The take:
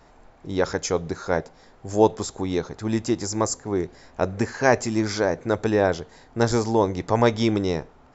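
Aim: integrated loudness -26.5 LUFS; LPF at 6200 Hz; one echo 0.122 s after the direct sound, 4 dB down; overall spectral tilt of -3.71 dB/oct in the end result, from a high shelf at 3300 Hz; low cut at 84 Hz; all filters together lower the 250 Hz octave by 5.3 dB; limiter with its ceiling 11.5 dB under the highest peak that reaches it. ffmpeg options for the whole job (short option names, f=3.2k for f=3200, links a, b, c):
-af "highpass=84,lowpass=6.2k,equalizer=f=250:t=o:g=-7.5,highshelf=f=3.3k:g=8.5,alimiter=limit=-13.5dB:level=0:latency=1,aecho=1:1:122:0.631,volume=0.5dB"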